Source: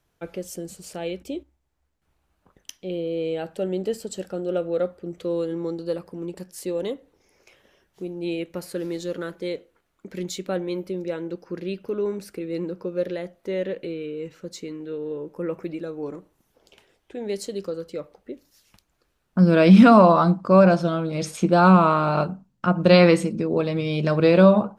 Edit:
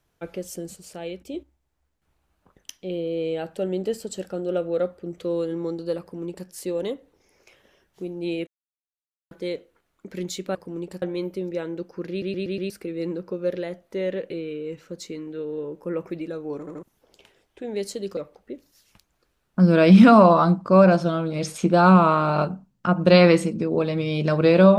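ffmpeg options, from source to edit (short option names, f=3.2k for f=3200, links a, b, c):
-filter_complex "[0:a]asplit=16[a][b][c][d][e][f][g][h][i][j][k][l][m][n][o][p];[a]atrim=end=0.762[q];[b]atrim=start=0.758:end=1.342,asetpts=PTS-STARTPTS,volume=-3.5dB[r];[c]atrim=start=1.338:end=8.47,asetpts=PTS-STARTPTS,afade=t=out:st=7.128:d=0.004:c=hsin[s];[d]atrim=start=8.47:end=9.31,asetpts=PTS-STARTPTS,volume=0[t];[e]atrim=start=9.31:end=10.552,asetpts=PTS-STARTPTS,afade=t=in:d=0.004:c=hsin[u];[f]atrim=start=6.008:end=6.482[v];[g]atrim=start=10.548:end=11.752[w];[h]atrim=start=11.628:end=11.752[x];[i]atrim=start=11.628:end=11.752[y];[j]atrim=start=11.628:end=11.752[z];[k]atrim=start=11.628:end=11.752[aa];[l]atrim=start=12.228:end=16.202[ab];[m]atrim=start=16.118:end=16.202[ac];[n]atrim=start=16.118:end=16.202[ad];[o]atrim=start=16.358:end=17.702[ae];[p]atrim=start=17.958[af];[q][r]acrossfade=d=0.004:c1=hsin:c2=hsin[ag];[s][t][u]concat=n=3:v=0:a=1[ah];[ag][ah]acrossfade=d=0.004:c1=hsin:c2=hsin[ai];[ai][v]acrossfade=d=0.004:c1=hsin:c2=hsin[aj];[aj][w]acrossfade=d=0.004:c1=hsin:c2=hsin[ak];[ak][x]acrossfade=d=0.004:c1=hsin:c2=hsin[al];[al][y]acrossfade=d=0.004:c1=hsin:c2=hsin[am];[am][z]acrossfade=d=0.004:c1=hsin:c2=hsin[an];[an][aa]acrossfade=d=0.004:c1=hsin:c2=hsin[ao];[ao][ab]acrossfade=d=0.004:c1=hsin:c2=hsin[ap];[ap][ac]acrossfade=d=0.004:c1=hsin:c2=hsin[aq];[aq][ad]acrossfade=d=0.004:c1=hsin:c2=hsin[ar];[ar][ae]acrossfade=d=0.004:c1=hsin:c2=hsin[as];[as][af]acrossfade=d=0.004:c1=hsin:c2=hsin"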